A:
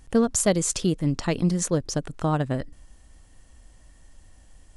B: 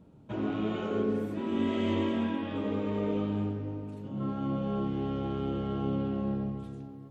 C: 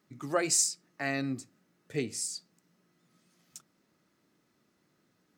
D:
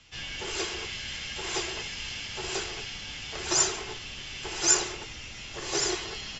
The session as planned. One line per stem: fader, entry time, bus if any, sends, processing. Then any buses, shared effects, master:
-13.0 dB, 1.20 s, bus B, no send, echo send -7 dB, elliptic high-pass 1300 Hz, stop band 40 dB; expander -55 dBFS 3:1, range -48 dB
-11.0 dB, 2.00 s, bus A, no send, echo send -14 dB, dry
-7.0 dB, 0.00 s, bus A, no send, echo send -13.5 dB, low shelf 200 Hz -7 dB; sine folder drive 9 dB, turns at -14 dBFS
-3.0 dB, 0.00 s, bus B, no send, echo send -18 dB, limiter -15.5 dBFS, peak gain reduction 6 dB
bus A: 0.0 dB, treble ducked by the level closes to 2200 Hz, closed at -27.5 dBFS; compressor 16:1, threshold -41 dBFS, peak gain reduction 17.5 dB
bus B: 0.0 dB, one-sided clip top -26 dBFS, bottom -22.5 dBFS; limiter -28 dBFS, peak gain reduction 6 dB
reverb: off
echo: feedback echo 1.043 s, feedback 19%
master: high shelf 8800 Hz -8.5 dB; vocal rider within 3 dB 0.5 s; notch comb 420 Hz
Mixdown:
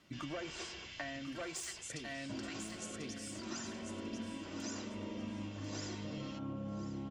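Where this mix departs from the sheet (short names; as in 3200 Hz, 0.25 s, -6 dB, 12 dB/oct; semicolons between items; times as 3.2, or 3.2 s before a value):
stem B -11.0 dB -> -2.5 dB; stem D -3.0 dB -> -14.0 dB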